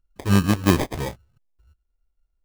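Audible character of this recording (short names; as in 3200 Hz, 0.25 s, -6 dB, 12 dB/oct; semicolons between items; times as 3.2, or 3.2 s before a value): phasing stages 8, 3 Hz, lowest notch 180–3300 Hz; aliases and images of a low sample rate 1400 Hz, jitter 0%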